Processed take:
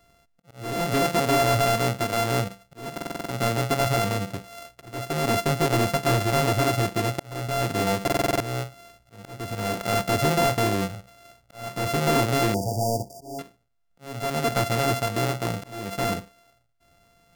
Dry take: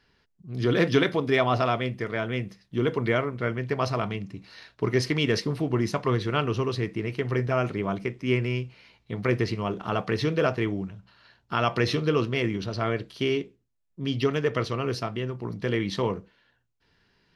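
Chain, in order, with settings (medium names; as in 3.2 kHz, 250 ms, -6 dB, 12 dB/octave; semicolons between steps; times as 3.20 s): sorted samples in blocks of 64 samples; hard clipper -23.5 dBFS, distortion -9 dB; slow attack 591 ms; 12.54–13.39 s: brick-wall FIR band-stop 960–4500 Hz; buffer glitch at 2.93/8.03 s, samples 2048, times 7; trim +6 dB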